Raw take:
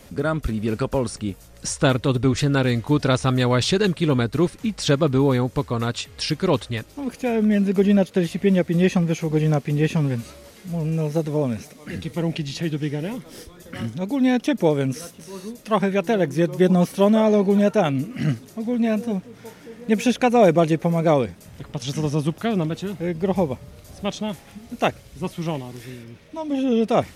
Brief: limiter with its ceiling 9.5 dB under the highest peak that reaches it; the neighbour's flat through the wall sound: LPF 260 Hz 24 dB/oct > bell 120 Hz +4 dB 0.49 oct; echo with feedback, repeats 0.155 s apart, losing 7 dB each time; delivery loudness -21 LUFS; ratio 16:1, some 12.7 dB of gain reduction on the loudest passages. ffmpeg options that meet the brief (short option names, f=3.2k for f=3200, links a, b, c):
-af "acompressor=threshold=-24dB:ratio=16,alimiter=limit=-24dB:level=0:latency=1,lowpass=f=260:w=0.5412,lowpass=f=260:w=1.3066,equalizer=f=120:t=o:w=0.49:g=4,aecho=1:1:155|310|465|620|775:0.447|0.201|0.0905|0.0407|0.0183,volume=13dB"